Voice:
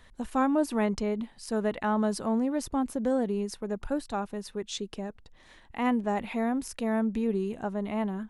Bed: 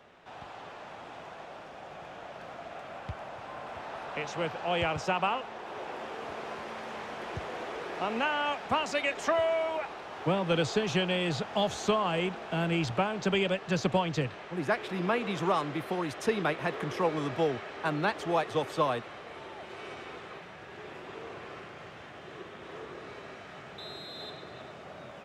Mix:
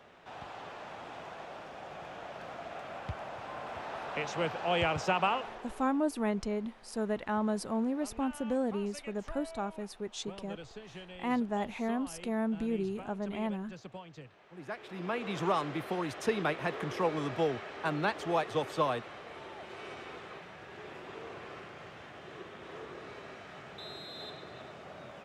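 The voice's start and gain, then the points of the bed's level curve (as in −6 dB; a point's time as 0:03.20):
5.45 s, −4.5 dB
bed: 0:05.45 0 dB
0:06.06 −19 dB
0:14.24 −19 dB
0:15.40 −2 dB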